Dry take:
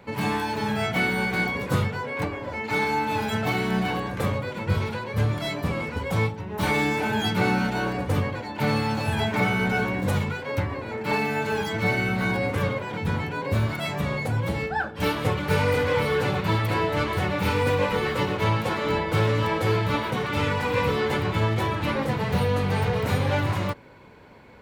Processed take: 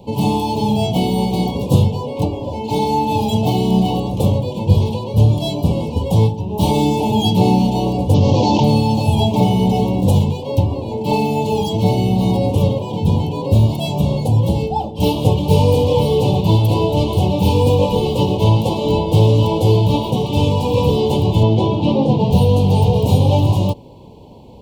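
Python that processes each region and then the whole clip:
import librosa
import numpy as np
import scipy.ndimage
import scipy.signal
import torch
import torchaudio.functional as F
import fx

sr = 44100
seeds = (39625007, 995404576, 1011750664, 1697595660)

y = fx.chain(x, sr, fx.cvsd(bps=32000),
    fx.highpass(hz=81.0, slope=12),
    fx.env_flatten(amount_pct=100), at=(8.14, 8.64))
y = fx.chain(y, sr, fx.bandpass_edges(low_hz=160.0, high_hz=4700.0),
    fx.low_shelf(hz=400.0, db=5.5), at=(21.43, 22.31))
y = scipy.signal.sosfilt(scipy.signal.ellip(3, 1.0, 80, [910.0, 2900.0], 'bandstop', fs=sr, output='sos'), y)
y = fx.low_shelf(y, sr, hz=350.0, db=5.0)
y = y * librosa.db_to_amplitude(7.5)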